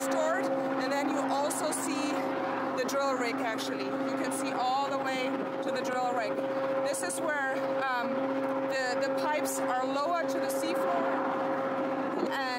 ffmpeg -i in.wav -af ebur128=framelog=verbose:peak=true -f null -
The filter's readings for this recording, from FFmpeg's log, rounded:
Integrated loudness:
  I:         -30.5 LUFS
  Threshold: -40.5 LUFS
Loudness range:
  LRA:         1.0 LU
  Threshold: -50.5 LUFS
  LRA low:   -31.0 LUFS
  LRA high:  -30.0 LUFS
True peak:
  Peak:      -17.6 dBFS